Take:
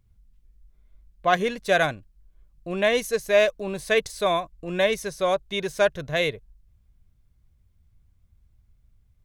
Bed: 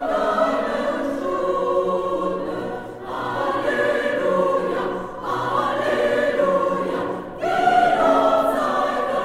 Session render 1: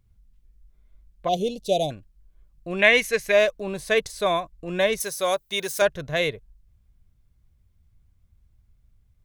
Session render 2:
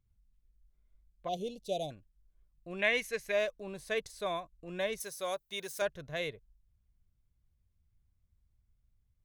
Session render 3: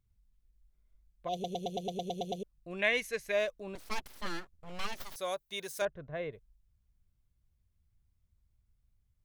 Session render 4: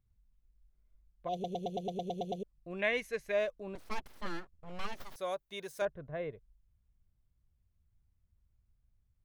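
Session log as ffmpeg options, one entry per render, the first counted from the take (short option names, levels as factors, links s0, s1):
-filter_complex "[0:a]asplit=3[s0][s1][s2];[s0]afade=t=out:st=1.27:d=0.02[s3];[s1]asuperstop=centerf=1500:order=8:qfactor=0.67,afade=t=in:st=1.27:d=0.02,afade=t=out:st=1.9:d=0.02[s4];[s2]afade=t=in:st=1.9:d=0.02[s5];[s3][s4][s5]amix=inputs=3:normalize=0,asettb=1/sr,asplit=3[s6][s7][s8];[s6]atrim=end=2.794[s9];[s7]atrim=start=2.79:end=3.32,asetpts=PTS-STARTPTS,afade=t=in:d=0.004:c=qsin,afade=t=out:st=0.526:d=0.004:c=qsin,equalizer=f=2200:w=1.5:g=12[s10];[s8]atrim=start=3.316[s11];[s9][s10]acrossfade=d=0.004:c1=hsin:c2=qsin[s12];[s12][s11]acrossfade=d=0.004:c1=qsin:c2=hsin,asettb=1/sr,asplit=3[s13][s14][s15];[s13]atrim=end=5.004[s16];[s14]atrim=start=5:end=5.82,asetpts=PTS-STARTPTS,afade=t=in:d=0.004:c=qsin,afade=t=out:st=0.816:d=0.004:c=qsin,aemphasis=mode=production:type=bsi[s17];[s15]atrim=start=5.816[s18];[s16][s17]acrossfade=d=0.004:c1=hsin:c2=qsin[s19];[s19][s18]acrossfade=d=0.004:c1=qsin:c2=hsin"
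-af "volume=0.237"
-filter_complex "[0:a]asettb=1/sr,asplit=3[s0][s1][s2];[s0]atrim=end=3.754[s3];[s1]atrim=start=3.75:end=5.16,asetpts=PTS-STARTPTS,afade=t=in:d=0.004:c=qsin,afade=t=out:st=1.406:d=0.004:c=qsin,aeval=exprs='abs(val(0))':c=same[s4];[s2]atrim=start=5.156[s5];[s3][s4]acrossfade=d=0.004:c1=hsin:c2=qsin[s6];[s6][s5]acrossfade=d=0.004:c1=qsin:c2=hsin,asettb=1/sr,asplit=3[s7][s8][s9];[s7]atrim=end=5.854[s10];[s8]atrim=start=5.85:end=6.33,asetpts=PTS-STARTPTS,afade=t=in:d=0.004:c=qsin,afade=t=out:st=0.476:d=0.004:c=qsin,lowpass=1500[s11];[s9]atrim=start=6.326[s12];[s10][s11]acrossfade=d=0.004:c1=hsin:c2=qsin[s13];[s13][s12]acrossfade=d=0.004:c1=qsin:c2=hsin,asplit=11[s14][s15][s16][s17][s18][s19][s20][s21][s22][s23][s24];[s14]atrim=end=1.442[s25];[s15]atrim=start=1.328:end=1.442[s26];[s16]atrim=start=1.328:end=1.442[s27];[s17]atrim=start=1.328:end=1.442[s28];[s18]atrim=start=1.328:end=1.442[s29];[s19]atrim=start=1.328:end=1.442[s30];[s20]atrim=start=1.328:end=1.442[s31];[s21]atrim=start=1.328:end=1.442[s32];[s22]atrim=start=1.328:end=1.442[s33];[s23]atrim=start=1.328:end=1.442[s34];[s24]atrim=start=2.428[s35];[s25][s26]acrossfade=d=0.004:c1=hsin:c2=hsin[s36];[s36][s27]acrossfade=d=0.004:c1=hsin:c2=hsin[s37];[s37][s28]acrossfade=d=0.004:c1=hsin:c2=hsin[s38];[s38][s29]acrossfade=d=0.004:c1=hsin:c2=hsin[s39];[s39][s30]acrossfade=d=0.004:c1=hsin:c2=hsin[s40];[s40][s31]acrossfade=d=0.004:c1=hsin:c2=hsin[s41];[s41][s32]acrossfade=d=0.004:c1=hsin:c2=hsin[s42];[s42][s33]acrossfade=d=0.004:c1=hsin:c2=hsin[s43];[s43][s34]acrossfade=d=0.004:c1=hsin:c2=hsin[s44];[s44][s35]acrossfade=d=0.004:c1=hsin:c2=hsin"
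-af "highshelf=f=2600:g=-9.5"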